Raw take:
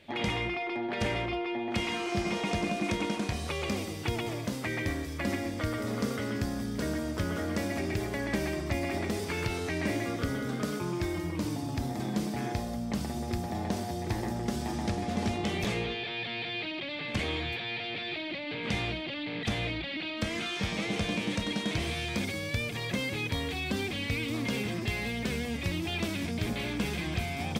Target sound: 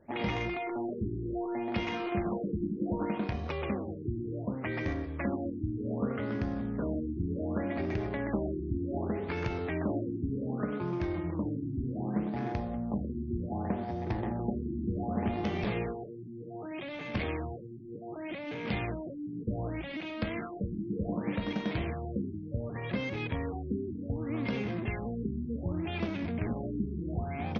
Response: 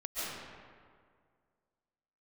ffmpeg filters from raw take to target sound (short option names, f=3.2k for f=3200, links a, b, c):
-af "adynamicsmooth=sensitivity=3:basefreq=1.3k,bandreject=f=50:t=h:w=6,bandreject=f=100:t=h:w=6,bandreject=f=150:t=h:w=6,afftfilt=real='re*lt(b*sr/1024,390*pow(6800/390,0.5+0.5*sin(2*PI*0.66*pts/sr)))':imag='im*lt(b*sr/1024,390*pow(6800/390,0.5+0.5*sin(2*PI*0.66*pts/sr)))':win_size=1024:overlap=0.75"